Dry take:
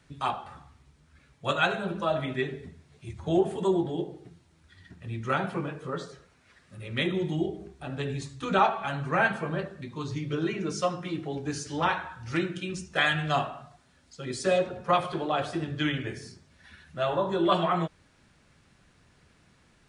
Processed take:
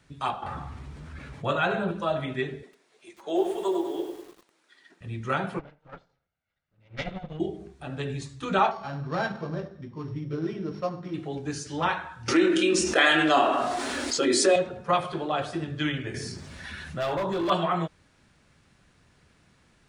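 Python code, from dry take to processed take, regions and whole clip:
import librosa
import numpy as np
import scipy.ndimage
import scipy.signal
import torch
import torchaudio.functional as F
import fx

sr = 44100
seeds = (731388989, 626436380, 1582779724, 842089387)

y = fx.chain(x, sr, fx.high_shelf(hz=3200.0, db=-11.0),
    fx.env_flatten(amount_pct=50), at=(0.42, 1.91))
y = fx.chain(y, sr, fx.highpass(hz=330.0, slope=24),
    fx.echo_crushed(ms=98, feedback_pct=55, bits=8, wet_db=-7.0), at=(2.63, 5.01))
y = fx.chain(y, sr, fx.lower_of_two(delay_ms=1.4),
    fx.air_absorb(metres=160.0),
    fx.upward_expand(threshold_db=-43.0, expansion=2.5), at=(5.59, 7.4))
y = fx.chain(y, sr, fx.sample_sort(block=8),
    fx.spacing_loss(db_at_10k=34), at=(8.71, 11.14))
y = fx.chain(y, sr, fx.low_shelf_res(hz=210.0, db=-13.5, q=3.0),
    fx.doubler(ms=25.0, db=-7.0),
    fx.env_flatten(amount_pct=70), at=(12.28, 14.56))
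y = fx.chain(y, sr, fx.clip_hard(threshold_db=-25.0),
    fx.env_flatten(amount_pct=50), at=(16.14, 17.5))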